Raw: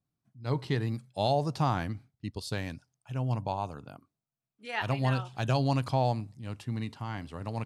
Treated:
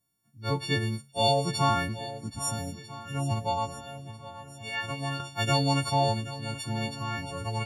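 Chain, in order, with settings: frequency quantiser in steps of 4 st; 2.06–3.03 spectral repair 310–5000 Hz before; 3.69–5.2 compressor 1.5:1, threshold -44 dBFS, peak gain reduction 8 dB; swung echo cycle 1.295 s, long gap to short 1.5:1, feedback 44%, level -14.5 dB; gain +1.5 dB

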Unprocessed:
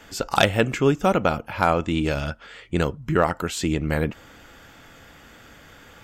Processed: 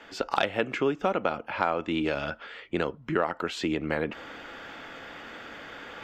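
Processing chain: reverse; upward compressor, threshold -32 dBFS; reverse; three-band isolator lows -15 dB, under 230 Hz, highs -20 dB, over 4500 Hz; compressor 2.5:1, threshold -24 dBFS, peak gain reduction 8.5 dB

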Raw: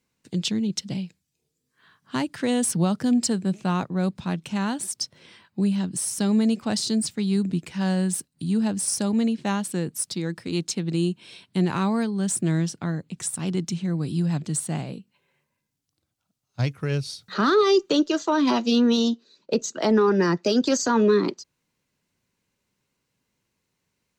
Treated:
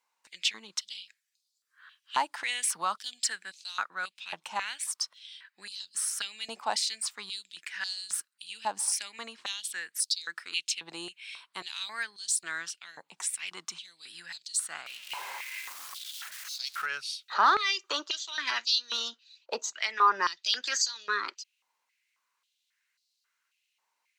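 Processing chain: 14.86–16.86 zero-crossing step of -32.5 dBFS; stepped high-pass 3.7 Hz 890–4300 Hz; gain -3.5 dB

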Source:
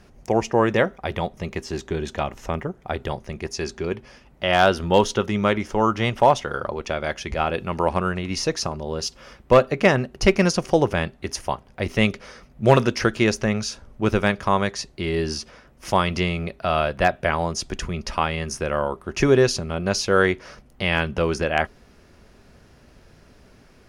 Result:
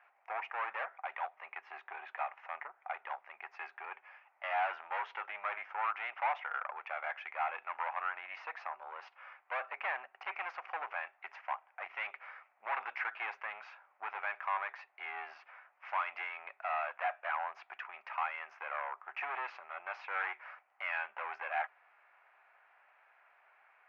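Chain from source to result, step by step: tube stage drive 23 dB, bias 0.35; elliptic band-pass 760–2400 Hz, stop band 80 dB; gain -3 dB

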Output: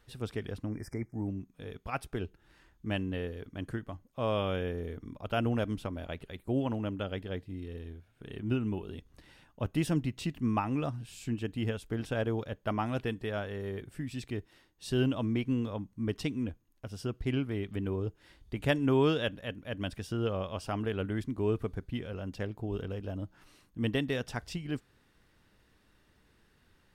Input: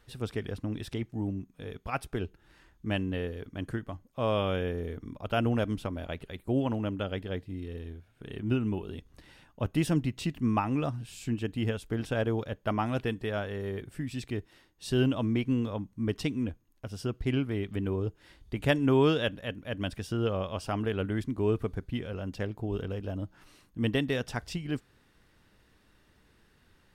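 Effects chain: spectral delete 0.69–1.27, 2400–4800 Hz; gain -2.5 dB

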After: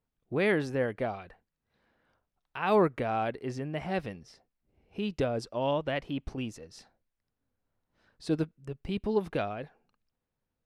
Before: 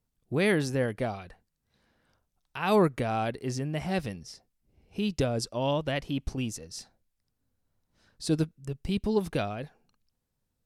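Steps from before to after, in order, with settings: tone controls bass -6 dB, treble -14 dB

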